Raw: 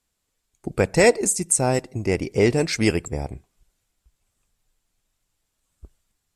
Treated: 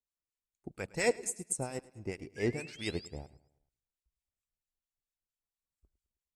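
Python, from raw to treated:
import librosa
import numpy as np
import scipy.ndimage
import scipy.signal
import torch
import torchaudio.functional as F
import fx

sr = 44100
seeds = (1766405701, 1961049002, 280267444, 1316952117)

p1 = fx.spec_paint(x, sr, seeds[0], shape='rise', start_s=2.36, length_s=0.71, low_hz=1600.0, high_hz=5200.0, level_db=-32.0)
p2 = fx.harmonic_tremolo(p1, sr, hz=4.4, depth_pct=70, crossover_hz=1300.0)
p3 = p2 + fx.echo_feedback(p2, sr, ms=106, feedback_pct=48, wet_db=-14.5, dry=0)
p4 = fx.upward_expand(p3, sr, threshold_db=-41.0, expansion=1.5)
y = p4 * 10.0 ** (-8.5 / 20.0)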